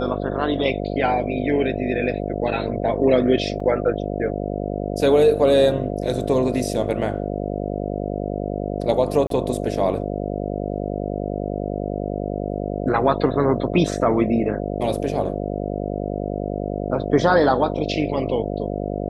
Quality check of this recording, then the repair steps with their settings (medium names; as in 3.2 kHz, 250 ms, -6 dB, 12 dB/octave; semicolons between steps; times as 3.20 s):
buzz 50 Hz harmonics 14 -26 dBFS
3.60 s: dropout 3.2 ms
9.27–9.30 s: dropout 33 ms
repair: de-hum 50 Hz, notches 14; interpolate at 3.60 s, 3.2 ms; interpolate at 9.27 s, 33 ms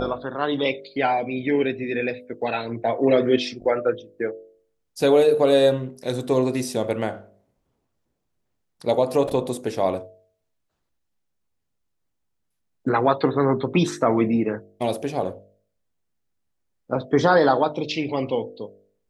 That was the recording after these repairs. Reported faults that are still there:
nothing left